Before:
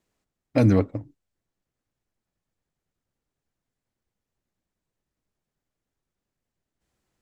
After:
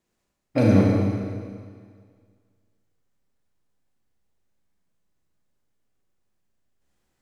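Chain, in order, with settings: Schroeder reverb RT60 1.9 s, combs from 31 ms, DRR -3.5 dB; trim -2 dB

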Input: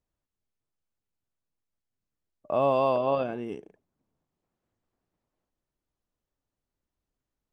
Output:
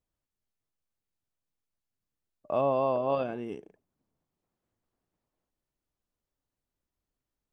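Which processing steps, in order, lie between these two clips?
2.61–3.10 s: treble shelf 2.1 kHz -10.5 dB; trim -2 dB

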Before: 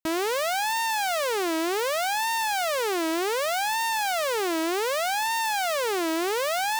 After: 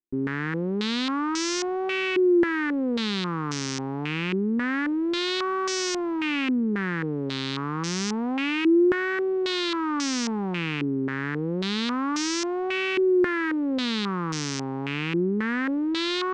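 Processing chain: static phaser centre 630 Hz, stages 4; wide varispeed 0.416×; step-sequenced low-pass 3.7 Hz 350–5800 Hz

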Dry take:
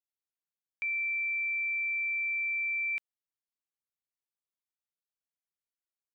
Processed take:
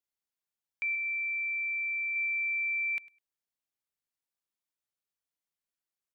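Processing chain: 0.95–2.16 s: distance through air 130 m; on a send: feedback delay 102 ms, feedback 15%, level -21 dB; on the sum: trim +1 dB

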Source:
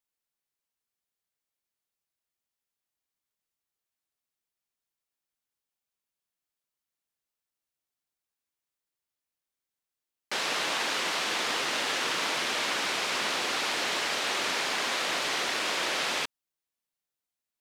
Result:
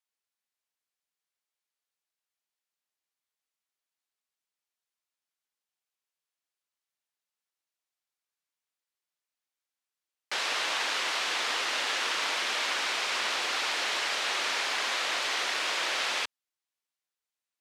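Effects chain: frequency weighting A; trim -1 dB

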